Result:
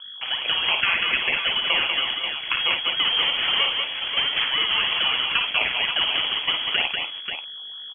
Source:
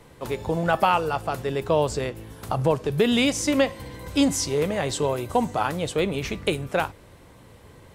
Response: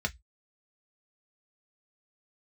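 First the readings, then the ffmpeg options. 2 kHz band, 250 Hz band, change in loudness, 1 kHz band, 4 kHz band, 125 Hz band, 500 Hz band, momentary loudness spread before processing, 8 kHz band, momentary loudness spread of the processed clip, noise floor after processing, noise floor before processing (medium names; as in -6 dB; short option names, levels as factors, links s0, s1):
+9.0 dB, -19.5 dB, +3.5 dB, -4.5 dB, +15.0 dB, under -15 dB, -15.0 dB, 9 LU, under -40 dB, 7 LU, -37 dBFS, -50 dBFS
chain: -filter_complex "[0:a]adynamicequalizer=threshold=0.0251:dfrequency=840:dqfactor=0.7:tfrequency=840:tqfactor=0.7:attack=5:release=100:ratio=0.375:range=2.5:mode=boostabove:tftype=bell,acrossover=split=670[s0][s1];[s1]crystalizer=i=1.5:c=0[s2];[s0][s2]amix=inputs=2:normalize=0,acompressor=threshold=0.0794:ratio=4,aresample=16000,acrusher=bits=5:mix=0:aa=0.000001,aresample=44100,aeval=exprs='val(0)+0.0126*(sin(2*PI*50*n/s)+sin(2*PI*2*50*n/s)/2+sin(2*PI*3*50*n/s)/3+sin(2*PI*4*50*n/s)/4+sin(2*PI*5*50*n/s)/5)':c=same,acrusher=samples=20:mix=1:aa=0.000001:lfo=1:lforange=12:lforate=3.1,highshelf=f=2400:g=8,aecho=1:1:55|192|536:0.501|0.596|0.422,lowpass=f=2900:t=q:w=0.5098,lowpass=f=2900:t=q:w=0.6013,lowpass=f=2900:t=q:w=0.9,lowpass=f=2900:t=q:w=2.563,afreqshift=-3400"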